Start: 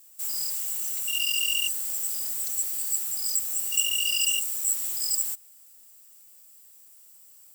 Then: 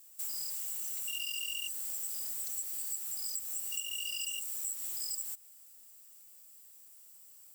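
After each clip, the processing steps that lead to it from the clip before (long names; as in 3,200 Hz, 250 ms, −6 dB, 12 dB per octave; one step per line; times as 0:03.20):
downward compressor, threshold −31 dBFS, peak gain reduction 12.5 dB
level −3.5 dB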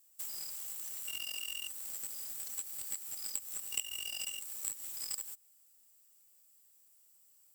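harmonic generator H 3 −11 dB, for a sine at −23 dBFS
level +7.5 dB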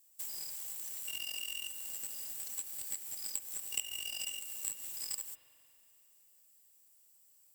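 notch filter 1,300 Hz, Q 6.7
spring reverb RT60 3 s, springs 45 ms, chirp 55 ms, DRR 10 dB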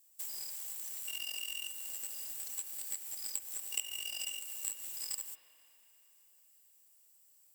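Bessel high-pass filter 250 Hz, order 2
delay with a band-pass on its return 119 ms, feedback 82%, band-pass 1,400 Hz, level −17.5 dB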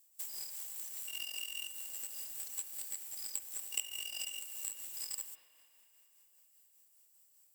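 amplitude tremolo 5 Hz, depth 34%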